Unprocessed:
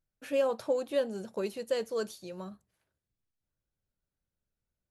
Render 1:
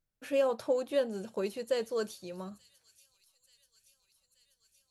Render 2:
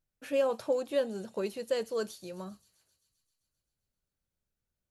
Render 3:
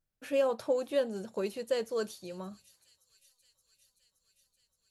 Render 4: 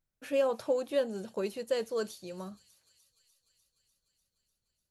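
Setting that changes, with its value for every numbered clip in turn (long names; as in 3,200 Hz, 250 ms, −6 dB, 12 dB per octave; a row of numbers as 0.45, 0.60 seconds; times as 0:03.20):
delay with a high-pass on its return, delay time: 881, 131, 572, 298 milliseconds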